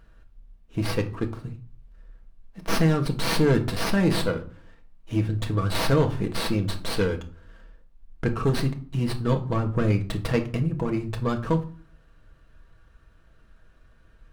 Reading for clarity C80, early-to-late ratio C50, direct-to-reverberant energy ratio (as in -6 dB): 18.5 dB, 13.5 dB, 3.0 dB